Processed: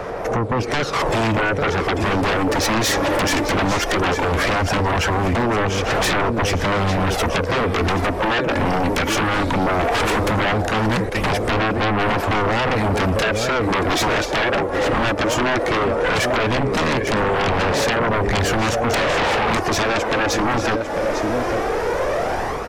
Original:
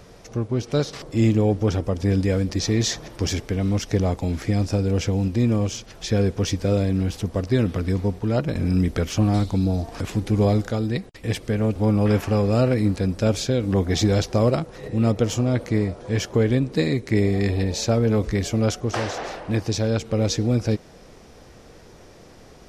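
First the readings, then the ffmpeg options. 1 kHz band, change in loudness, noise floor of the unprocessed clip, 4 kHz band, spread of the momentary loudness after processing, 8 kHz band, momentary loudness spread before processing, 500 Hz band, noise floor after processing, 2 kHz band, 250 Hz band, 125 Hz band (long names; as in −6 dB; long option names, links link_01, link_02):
+15.0 dB, +3.5 dB, −47 dBFS, +8.0 dB, 3 LU, +4.5 dB, 7 LU, +4.5 dB, −24 dBFS, +15.0 dB, −0.5 dB, −3.0 dB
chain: -filter_complex "[0:a]acrossover=split=430 2200:gain=0.178 1 0.224[link_01][link_02][link_03];[link_01][link_02][link_03]amix=inputs=3:normalize=0,aphaser=in_gain=1:out_gain=1:delay=3.6:decay=0.47:speed=0.17:type=sinusoidal,acompressor=threshold=-40dB:ratio=6,equalizer=frequency=4500:width_type=o:width=2:gain=-4.5,dynaudnorm=framelen=150:gausssize=5:maxgain=12dB,asplit=2[link_04][link_05];[link_05]aecho=0:1:849:0.266[link_06];[link_04][link_06]amix=inputs=2:normalize=0,aeval=exprs='0.168*sin(PI/2*6.31*val(0)/0.168)':channel_layout=same"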